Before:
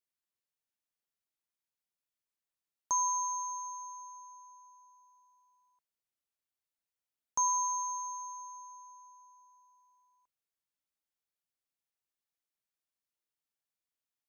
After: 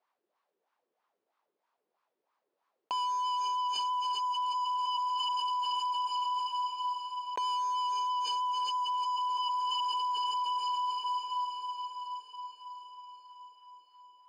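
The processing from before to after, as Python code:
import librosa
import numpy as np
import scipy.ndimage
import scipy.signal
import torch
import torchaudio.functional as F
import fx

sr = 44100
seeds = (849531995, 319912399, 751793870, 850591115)

y = fx.wah_lfo(x, sr, hz=3.1, low_hz=390.0, high_hz=1100.0, q=4.6)
y = fx.dynamic_eq(y, sr, hz=500.0, q=0.94, threshold_db=-58.0, ratio=4.0, max_db=-5)
y = fx.leveller(y, sr, passes=5)
y = scipy.signal.sosfilt(scipy.signal.cheby1(2, 1.0, [210.0, 4900.0], 'bandpass', fs=sr, output='sos'), y)
y = fx.echo_diffused(y, sr, ms=455, feedback_pct=56, wet_db=-15.5)
y = fx.env_flatten(y, sr, amount_pct=100)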